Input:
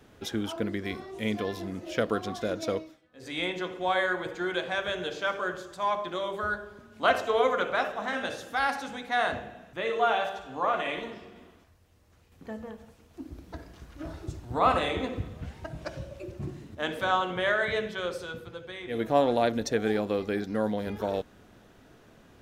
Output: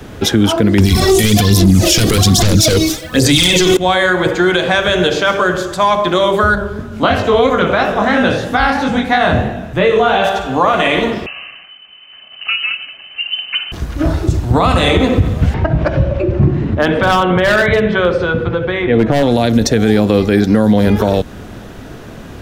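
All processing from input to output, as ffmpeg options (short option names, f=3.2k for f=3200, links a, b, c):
-filter_complex "[0:a]asettb=1/sr,asplit=3[a][b][c];[a]atrim=end=0.784[d];[b]atrim=start=0.78:end=3.77,asetpts=PTS-STARTPTS,afade=t=in:d=0.004:c=qsin,afade=t=out:st=2.986:d=0.004:c=qsin,bass=f=250:g=-1,treble=f=4k:g=10,aphaser=in_gain=1:out_gain=1:delay=2.7:decay=0.58:speed=1.2:type=sinusoidal,aeval=exprs='0.299*sin(PI/2*3.98*val(0)/0.299)':c=same[e];[c]atrim=start=3.766[f];[d][e]acrossfade=d=0.004:c1=hsin:c2=qsin[g];[g][f]acrossfade=d=0.004:c1=qsin:c2=hsin,asettb=1/sr,asplit=3[h][i][j];[h]atrim=end=6.554[k];[i]atrim=start=6.55:end=10.24,asetpts=PTS-STARTPTS,afade=t=in:d=0.004:c=qsin,afade=t=out:st=3.686:d=0.004:c=qsin,acrossover=split=4500[l][m];[m]acompressor=threshold=-59dB:ratio=4:attack=1:release=60[n];[l][n]amix=inputs=2:normalize=0,lowshelf=f=320:g=7.5,flanger=delay=20:depth=6:speed=3[o];[j]atrim=start=10.236[p];[k][o]acrossfade=d=0.004:c1=hsin:c2=qsin[q];[q][p]acrossfade=d=0.004:c1=qsin:c2=hsin,asettb=1/sr,asplit=3[r][s][t];[r]atrim=end=11.264[u];[s]atrim=start=11.26:end=13.72,asetpts=PTS-STARTPTS,afade=t=in:d=0.004:c=qsin,afade=t=out:st=2.456:d=0.004:c=qsin,aecho=1:1:2.1:0.31,atrim=end_sample=108486,lowpass=f=2.6k:t=q:w=0.5098,lowpass=f=2.6k:t=q:w=0.6013,lowpass=f=2.6k:t=q:w=0.9,lowpass=f=2.6k:t=q:w=2.563,afreqshift=-3100[v];[t]atrim=start=13.716[w];[u][v]acrossfade=d=0.004:c1=hsin:c2=qsin[x];[x][w]acrossfade=d=0.004:c1=qsin:c2=hsin,asettb=1/sr,asplit=3[y][z][aa];[y]atrim=end=15.544[ab];[z]atrim=start=15.54:end=19.23,asetpts=PTS-STARTPTS,afade=t=in:d=0.004:c=qsin,afade=t=out:st=3.686:d=0.004:c=qsin,lowpass=2.3k,acompressor=mode=upward:threshold=-33dB:ratio=2.5:attack=3.2:release=140:knee=2.83:detection=peak,volume=22.5dB,asoftclip=hard,volume=-22.5dB[ac];[aa]atrim=start=19.226[ad];[ab][ac]acrossfade=d=0.004:c1=hsin:c2=qsin[ae];[ae][ad]acrossfade=d=0.004:c1=qsin:c2=hsin,lowshelf=f=220:g=6,acrossover=split=230|3000[af][ag][ah];[ag]acompressor=threshold=-30dB:ratio=6[ai];[af][ai][ah]amix=inputs=3:normalize=0,alimiter=level_in=22.5dB:limit=-1dB:release=50:level=0:latency=1,volume=-1dB"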